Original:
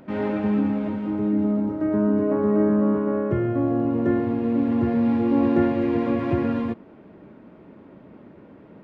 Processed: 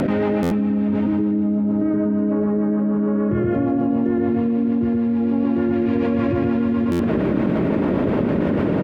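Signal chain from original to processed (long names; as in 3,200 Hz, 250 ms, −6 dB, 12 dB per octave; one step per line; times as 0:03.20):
rotating-speaker cabinet horn 6.7 Hz
on a send: repeating echo 116 ms, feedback 40%, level −3 dB
on the sum: buffer that repeats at 0:00.42/0:06.91, samples 512, times 7
envelope flattener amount 100%
level −4 dB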